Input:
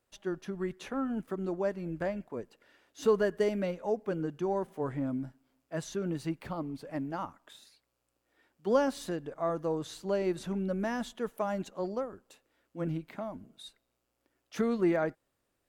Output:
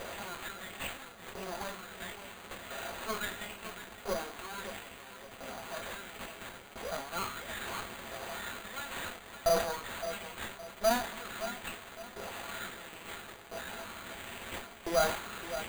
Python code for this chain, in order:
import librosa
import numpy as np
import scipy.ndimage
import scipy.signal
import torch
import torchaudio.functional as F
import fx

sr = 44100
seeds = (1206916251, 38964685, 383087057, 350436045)

p1 = x + 0.5 * 10.0 ** (-29.5 / 20.0) * np.sign(x)
p2 = fx.filter_lfo_highpass(p1, sr, shape='saw_up', hz=0.74, low_hz=540.0, high_hz=6900.0, q=2.3)
p3 = fx.chorus_voices(p2, sr, voices=2, hz=1.4, base_ms=24, depth_ms=3.0, mix_pct=30)
p4 = np.maximum(p3, 0.0)
p5 = fx.notch_comb(p4, sr, f0_hz=150.0)
p6 = fx.small_body(p5, sr, hz=(210.0, 430.0, 670.0, 1400.0), ring_ms=45, db=7)
p7 = fx.sample_hold(p6, sr, seeds[0], rate_hz=5400.0, jitter_pct=0)
p8 = p7 + fx.echo_feedback(p7, sr, ms=565, feedback_pct=36, wet_db=-11, dry=0)
y = fx.sustainer(p8, sr, db_per_s=94.0)